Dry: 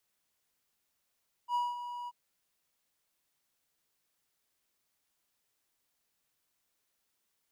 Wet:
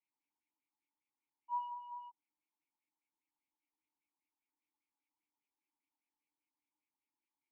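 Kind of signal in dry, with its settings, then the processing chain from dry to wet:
ADSR triangle 969 Hz, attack 68 ms, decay 202 ms, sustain -11 dB, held 0.60 s, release 35 ms -25 dBFS
LFO low-pass sine 5 Hz 930–2800 Hz; vowel filter u

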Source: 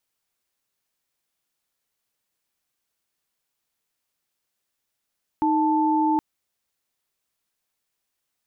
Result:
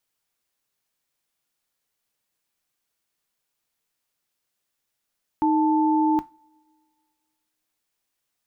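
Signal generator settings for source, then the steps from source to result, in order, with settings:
chord D#4/A5 sine, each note -20.5 dBFS 0.77 s
two-slope reverb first 0.26 s, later 2.1 s, from -28 dB, DRR 13 dB

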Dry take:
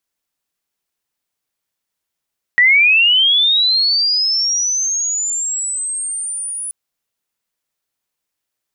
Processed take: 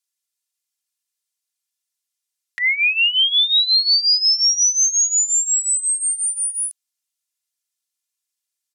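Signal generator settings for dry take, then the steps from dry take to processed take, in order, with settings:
sweep linear 1.9 kHz -> 9.9 kHz -7 dBFS -> -22 dBFS 4.13 s
band-pass filter 7.8 kHz, Q 0.74; comb 2.9 ms, depth 69%

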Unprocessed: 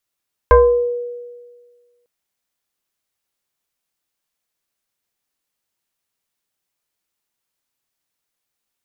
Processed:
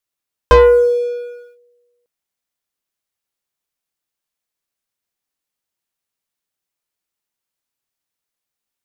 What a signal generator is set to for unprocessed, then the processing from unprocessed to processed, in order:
FM tone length 1.55 s, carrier 483 Hz, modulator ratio 1.13, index 1.4, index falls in 0.60 s exponential, decay 1.60 s, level -4 dB
waveshaping leveller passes 2

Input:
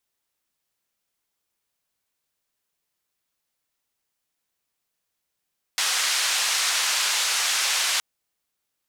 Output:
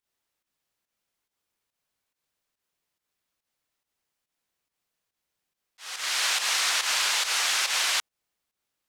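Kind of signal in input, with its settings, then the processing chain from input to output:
noise band 1.1–6.9 kHz, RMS -23.5 dBFS 2.22 s
slow attack 468 ms; treble shelf 6.1 kHz -5.5 dB; volume shaper 141 bpm, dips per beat 1, -10 dB, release 130 ms

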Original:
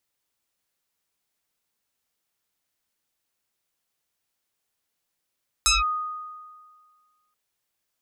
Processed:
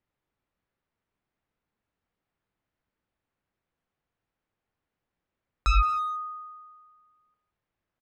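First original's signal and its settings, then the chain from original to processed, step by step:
FM tone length 1.68 s, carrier 1.24 kHz, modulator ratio 1.04, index 6.8, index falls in 0.17 s linear, decay 1.75 s, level -15 dB
low-pass 2 kHz 12 dB/octave; bass shelf 290 Hz +10 dB; speakerphone echo 170 ms, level -11 dB

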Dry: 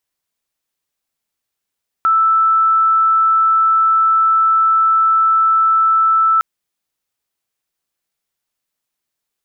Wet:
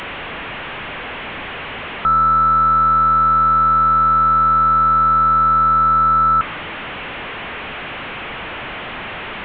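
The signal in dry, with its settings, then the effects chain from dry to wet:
tone sine 1.32 kHz -9.5 dBFS 4.36 s
one-bit delta coder 16 kbps, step -21.5 dBFS; dynamic bell 1.2 kHz, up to +6 dB, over -33 dBFS, Q 5.3

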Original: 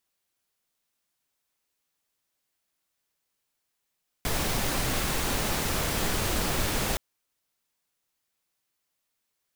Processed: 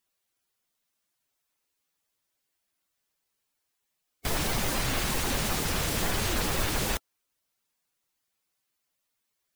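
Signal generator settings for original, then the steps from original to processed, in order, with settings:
noise pink, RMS -27.5 dBFS 2.72 s
coarse spectral quantiser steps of 15 dB

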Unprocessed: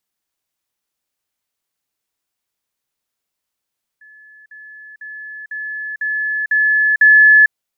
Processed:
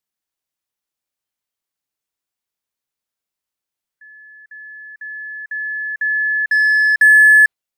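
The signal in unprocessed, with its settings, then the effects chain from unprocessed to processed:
level ladder 1.72 kHz -41 dBFS, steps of 6 dB, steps 7, 0.45 s 0.05 s
spectral noise reduction 8 dB; in parallel at -11 dB: wavefolder -17 dBFS

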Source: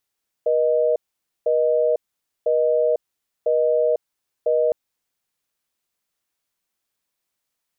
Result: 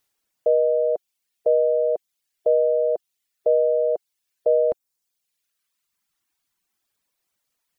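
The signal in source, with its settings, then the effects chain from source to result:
call progress tone busy tone, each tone -18.5 dBFS 4.26 s
reverb removal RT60 1.5 s; in parallel at -1.5 dB: peak limiter -22.5 dBFS

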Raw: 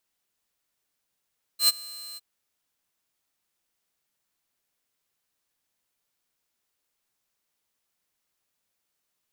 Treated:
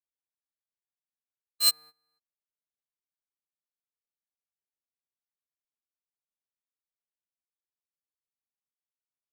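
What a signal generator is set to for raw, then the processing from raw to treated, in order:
ADSR saw 4.12 kHz, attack 94 ms, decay 28 ms, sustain -23 dB, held 0.58 s, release 28 ms -12.5 dBFS
local Wiener filter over 15 samples; gate -45 dBFS, range -23 dB

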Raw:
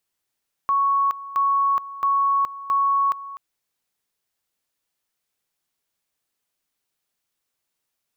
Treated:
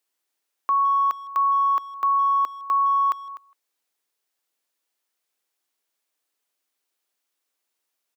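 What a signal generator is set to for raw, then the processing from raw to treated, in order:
two-level tone 1.11 kHz -16.5 dBFS, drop 16 dB, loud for 0.42 s, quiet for 0.25 s, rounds 4
high-pass 260 Hz 24 dB/octave; speakerphone echo 160 ms, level -21 dB

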